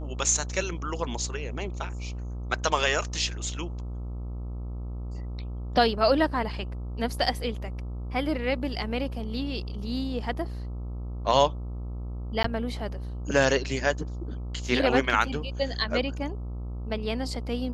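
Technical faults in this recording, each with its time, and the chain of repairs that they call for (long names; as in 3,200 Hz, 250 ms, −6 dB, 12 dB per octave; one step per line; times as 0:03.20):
mains buzz 60 Hz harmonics 22 −34 dBFS
0:12.43–0:12.44: drop-out 14 ms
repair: hum removal 60 Hz, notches 22
repair the gap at 0:12.43, 14 ms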